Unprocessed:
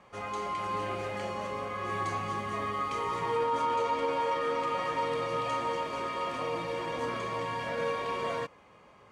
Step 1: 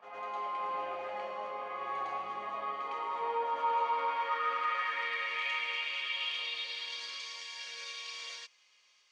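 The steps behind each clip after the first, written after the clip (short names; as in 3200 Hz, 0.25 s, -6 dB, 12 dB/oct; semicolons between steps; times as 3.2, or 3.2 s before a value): weighting filter D; band-pass sweep 780 Hz -> 5600 Hz, 3.48–7.44; reverse echo 0.107 s -4.5 dB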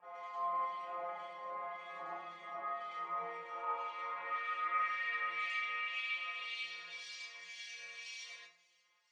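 metallic resonator 170 Hz, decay 0.27 s, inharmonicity 0.002; harmonic tremolo 1.9 Hz, depth 70%, crossover 2100 Hz; on a send at -4 dB: reverb RT60 1.0 s, pre-delay 7 ms; on the sum: gain +7 dB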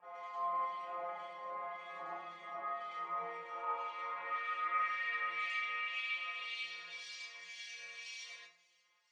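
nothing audible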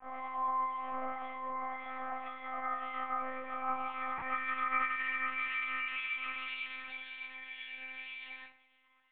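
LPF 2400 Hz 12 dB/oct; in parallel at 0 dB: compressor, threshold -47 dBFS, peak gain reduction 14.5 dB; on the sum: monotone LPC vocoder at 8 kHz 260 Hz; gain +1.5 dB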